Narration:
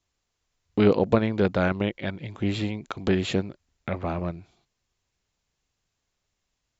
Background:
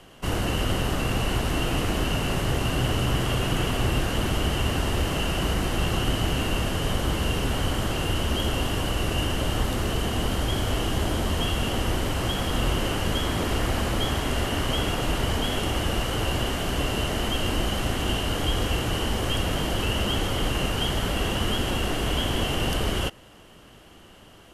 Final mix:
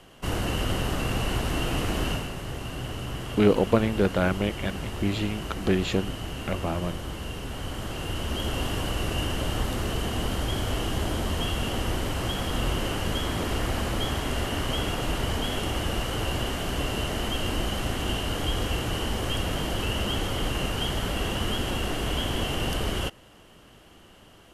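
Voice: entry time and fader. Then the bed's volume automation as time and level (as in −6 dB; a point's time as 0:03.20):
2.60 s, −0.5 dB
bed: 0:02.11 −2 dB
0:02.32 −9.5 dB
0:07.45 −9.5 dB
0:08.65 −2.5 dB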